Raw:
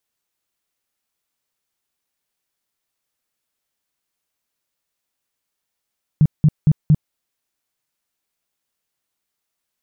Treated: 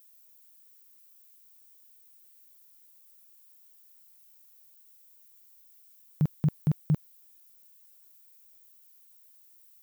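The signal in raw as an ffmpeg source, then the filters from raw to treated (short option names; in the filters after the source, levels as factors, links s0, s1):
-f lavfi -i "aevalsrc='0.398*sin(2*PI*152*mod(t,0.23))*lt(mod(t,0.23),7/152)':d=0.92:s=44100"
-af "aemphasis=mode=production:type=riaa"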